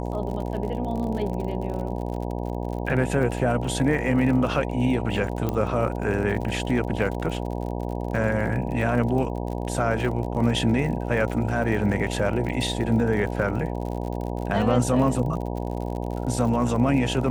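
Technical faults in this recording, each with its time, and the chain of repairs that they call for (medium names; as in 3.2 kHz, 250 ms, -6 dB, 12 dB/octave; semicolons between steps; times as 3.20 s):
buzz 60 Hz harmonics 16 -29 dBFS
crackle 57 per s -32 dBFS
5.49 s: pop -13 dBFS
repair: de-click; de-hum 60 Hz, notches 16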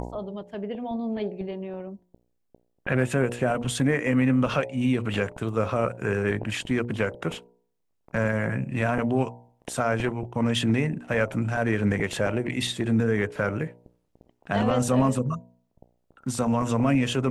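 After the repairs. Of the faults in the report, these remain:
5.49 s: pop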